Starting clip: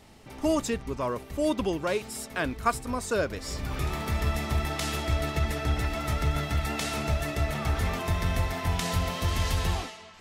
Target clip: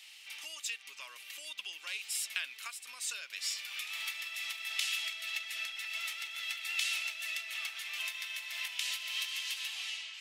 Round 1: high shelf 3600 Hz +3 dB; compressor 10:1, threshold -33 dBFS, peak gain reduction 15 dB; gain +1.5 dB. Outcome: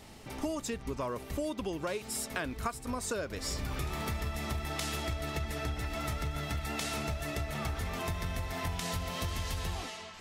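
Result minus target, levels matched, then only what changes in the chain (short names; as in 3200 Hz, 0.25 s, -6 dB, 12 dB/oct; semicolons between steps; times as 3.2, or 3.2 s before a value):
2000 Hz band -4.0 dB
add after compressor: resonant high-pass 2700 Hz, resonance Q 2.8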